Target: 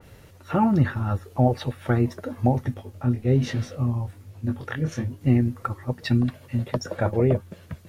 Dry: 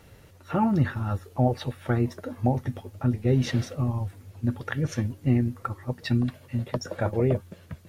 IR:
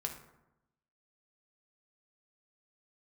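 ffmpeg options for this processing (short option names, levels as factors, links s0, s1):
-filter_complex "[0:a]asettb=1/sr,asplit=3[s0][s1][s2];[s0]atrim=end=2.744[s3];[s1]atrim=start=2.74:end=5.21,asetpts=PTS-STARTPTS,afade=t=in:d=0.004:c=qsin,afade=t=out:st=2.466:d=0.004:c=qsin,flanger=delay=19:depth=6.4:speed=1.2[s4];[s2]atrim=start=5.206[s5];[s3][s4]acrossfade=d=0.004:c1=hsin:c2=qsin[s6];[s6][s5]acrossfade=d=0.004:c1=qsin:c2=hsin,adynamicequalizer=threshold=0.00501:dfrequency=2500:dqfactor=0.7:tfrequency=2500:tqfactor=0.7:attack=5:release=100:ratio=0.375:range=2:mode=cutabove:tftype=highshelf,volume=1.41"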